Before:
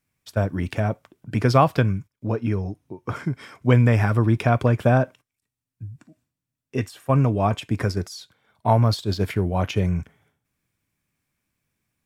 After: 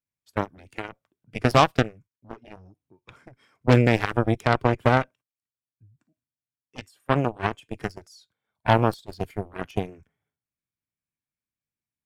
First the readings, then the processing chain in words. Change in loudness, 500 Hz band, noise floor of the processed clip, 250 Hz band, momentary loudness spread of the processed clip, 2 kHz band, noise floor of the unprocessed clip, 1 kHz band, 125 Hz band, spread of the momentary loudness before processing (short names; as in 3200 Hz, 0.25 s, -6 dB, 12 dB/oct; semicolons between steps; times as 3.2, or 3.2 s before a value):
-1.5 dB, -1.5 dB, under -85 dBFS, -3.5 dB, 19 LU, +1.5 dB, under -85 dBFS, 0.0 dB, -6.5 dB, 15 LU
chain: added harmonics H 7 -15 dB, 8 -36 dB, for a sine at -3 dBFS; spectral noise reduction 7 dB